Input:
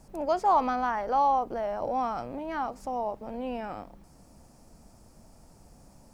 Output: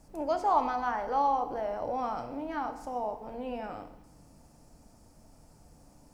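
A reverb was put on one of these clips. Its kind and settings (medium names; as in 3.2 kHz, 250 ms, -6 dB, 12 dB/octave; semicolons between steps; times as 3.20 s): FDN reverb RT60 0.9 s, low-frequency decay 1.1×, high-frequency decay 0.95×, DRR 6.5 dB; trim -3.5 dB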